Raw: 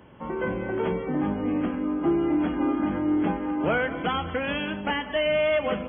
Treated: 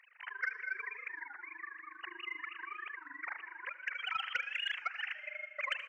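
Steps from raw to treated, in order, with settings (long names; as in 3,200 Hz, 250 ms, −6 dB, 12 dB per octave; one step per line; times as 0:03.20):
three sine waves on the formant tracks
Chebyshev high-pass filter 1,800 Hz, order 3
compressor whose output falls as the input rises −44 dBFS, ratio −0.5
amplitude modulation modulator 25 Hz, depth 90%
soft clipping −32.5 dBFS, distortion −25 dB
single-tap delay 73 ms −17.5 dB
on a send at −14.5 dB: convolution reverb RT60 2.1 s, pre-delay 65 ms
on the sum: wow of a warped record 33 1/3 rpm, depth 160 cents
level +10.5 dB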